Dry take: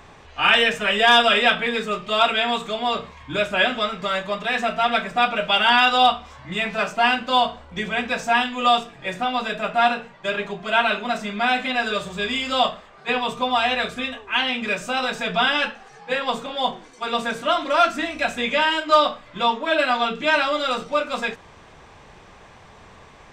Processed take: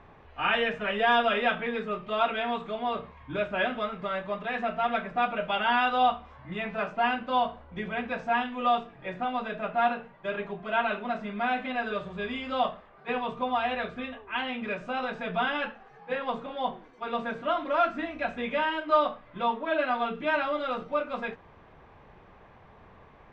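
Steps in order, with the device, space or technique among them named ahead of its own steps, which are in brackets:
phone in a pocket (low-pass filter 3,100 Hz 12 dB per octave; high-shelf EQ 2,400 Hz −9.5 dB)
level −5.5 dB

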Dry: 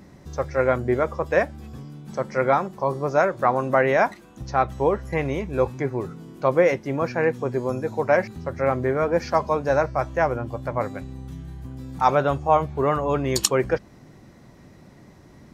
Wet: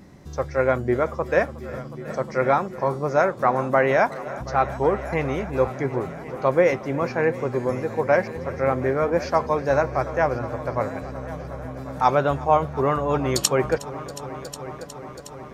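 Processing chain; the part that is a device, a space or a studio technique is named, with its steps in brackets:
multi-head tape echo (echo machine with several playback heads 363 ms, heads all three, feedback 66%, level −20 dB; tape wow and flutter 21 cents)

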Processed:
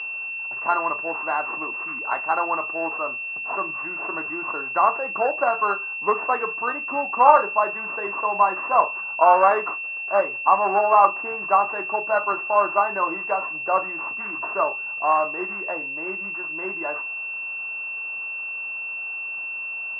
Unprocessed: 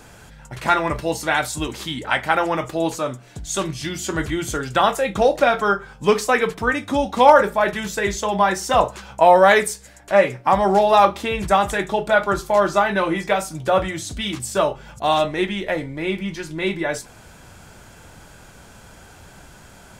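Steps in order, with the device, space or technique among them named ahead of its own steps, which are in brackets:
toy sound module (linearly interpolated sample-rate reduction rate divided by 6×; switching amplifier with a slow clock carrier 2,700 Hz; loudspeaker in its box 520–4,300 Hz, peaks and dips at 520 Hz −5 dB, 1,100 Hz +10 dB, 2,600 Hz −3 dB, 3,900 Hz −8 dB)
level −1.5 dB

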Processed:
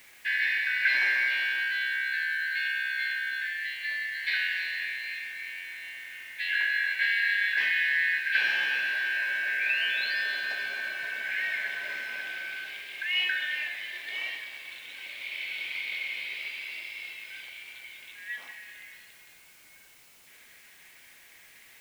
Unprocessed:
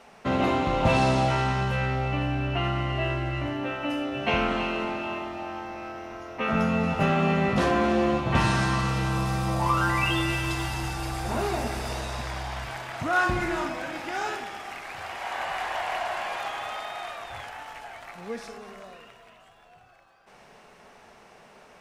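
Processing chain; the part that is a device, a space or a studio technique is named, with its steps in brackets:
split-band scrambled radio (band-splitting scrambler in four parts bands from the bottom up 4123; band-pass filter 320–2,900 Hz; white noise bed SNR 26 dB)
level −2.5 dB

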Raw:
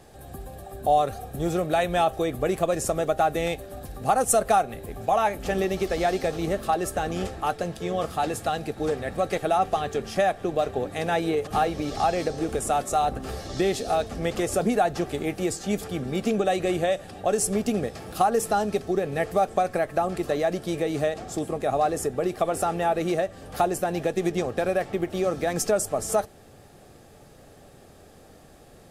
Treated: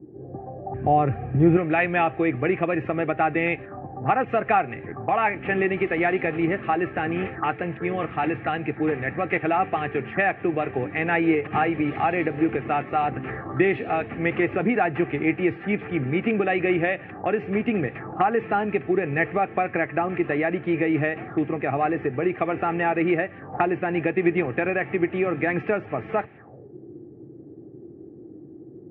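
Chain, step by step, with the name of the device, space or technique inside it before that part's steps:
0:00.65–0:01.57: spectral tilt −3 dB per octave
envelope filter bass rig (envelope-controlled low-pass 280–2,500 Hz up, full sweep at −27 dBFS; loudspeaker in its box 89–2,400 Hz, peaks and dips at 130 Hz +8 dB, 320 Hz +8 dB, 590 Hz −6 dB, 1,900 Hz +5 dB)

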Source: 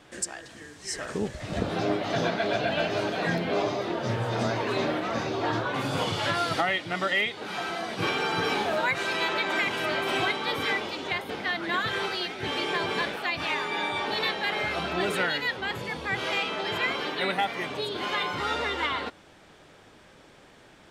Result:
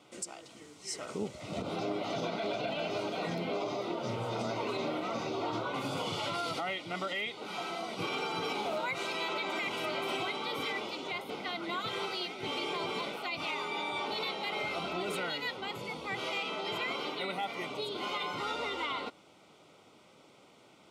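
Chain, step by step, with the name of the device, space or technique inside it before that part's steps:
PA system with an anti-feedback notch (high-pass filter 140 Hz 12 dB per octave; Butterworth band-reject 1,700 Hz, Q 3.5; brickwall limiter −20.5 dBFS, peak gain reduction 8 dB)
level −5 dB

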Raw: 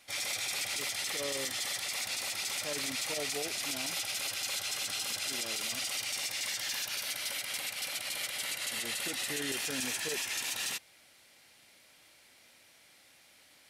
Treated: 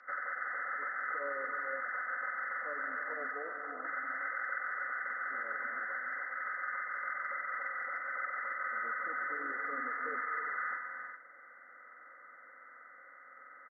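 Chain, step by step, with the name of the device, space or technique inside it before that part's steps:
hearing aid with frequency lowering (hearing-aid frequency compression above 1,100 Hz 4 to 1; downward compressor 3 to 1, threshold −37 dBFS, peak gain reduction 9.5 dB; loudspeaker in its box 390–5,800 Hz, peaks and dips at 550 Hz +6 dB, 790 Hz −4 dB, 1,200 Hz +4 dB, 1,800 Hz −7 dB, 3,100 Hz −4 dB, 5,000 Hz +6 dB)
0:03.31–0:03.85: flat-topped bell 3,200 Hz −10.5 dB 2.3 octaves
comb filter 4 ms, depth 50%
reverb whose tail is shaped and stops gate 420 ms rising, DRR 4 dB

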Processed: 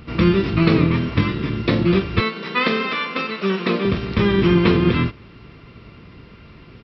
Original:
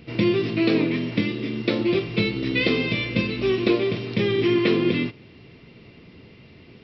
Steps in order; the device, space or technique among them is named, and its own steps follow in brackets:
0:02.20–0:03.85: elliptic high-pass filter 410 Hz, stop band 80 dB
octave pedal (pitch-shifted copies added −12 semitones 0 dB)
level +2 dB

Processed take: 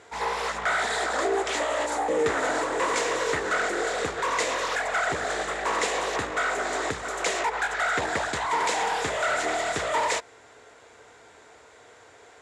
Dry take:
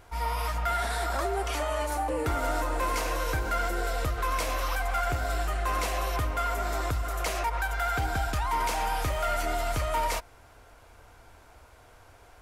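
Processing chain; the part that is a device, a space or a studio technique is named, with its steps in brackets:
full-range speaker at full volume (highs frequency-modulated by the lows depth 0.84 ms; loudspeaker in its box 180–8,900 Hz, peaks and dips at 440 Hz +9 dB, 1,900 Hz +8 dB, 3,700 Hz +6 dB, 7,200 Hz +10 dB)
level +2 dB

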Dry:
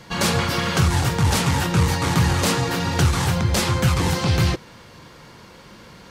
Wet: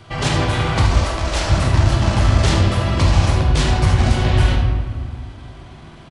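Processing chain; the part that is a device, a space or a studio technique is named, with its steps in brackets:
monster voice (pitch shifter −6 semitones; low-shelf EQ 150 Hz +3.5 dB; single-tap delay 75 ms −9.5 dB; convolution reverb RT60 1.8 s, pre-delay 16 ms, DRR 1 dB)
0:01.05–0:01.50: parametric band 120 Hz −14 dB 1.6 octaves
level −1 dB

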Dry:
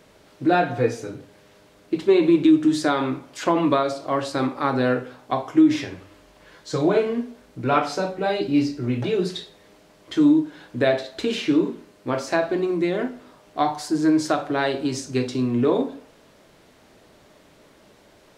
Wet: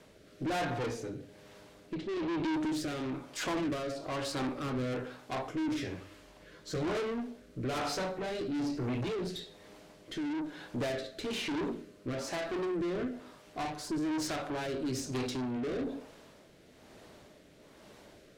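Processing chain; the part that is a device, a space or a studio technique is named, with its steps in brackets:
overdriven rotary cabinet (tube saturation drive 30 dB, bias 0.35; rotating-speaker cabinet horn 1.1 Hz)
0:01.95–0:02.54: low-pass filter 5,300 Hz 12 dB per octave

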